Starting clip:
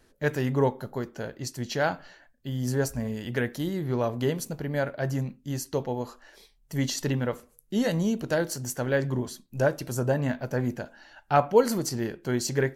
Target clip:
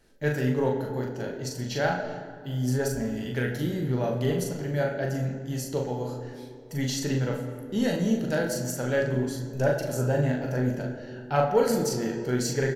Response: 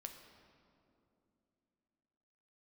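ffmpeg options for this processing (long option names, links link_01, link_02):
-filter_complex "[0:a]equalizer=frequency=1100:width=5.6:gain=-7.5,asplit=2[link_01][link_02];[link_02]asoftclip=type=tanh:threshold=-17.5dB,volume=-4dB[link_03];[link_01][link_03]amix=inputs=2:normalize=0,asplit=2[link_04][link_05];[link_05]adelay=40,volume=-4dB[link_06];[link_04][link_06]amix=inputs=2:normalize=0[link_07];[1:a]atrim=start_sample=2205,asetrate=61740,aresample=44100[link_08];[link_07][link_08]afir=irnorm=-1:irlink=0,volume=2.5dB"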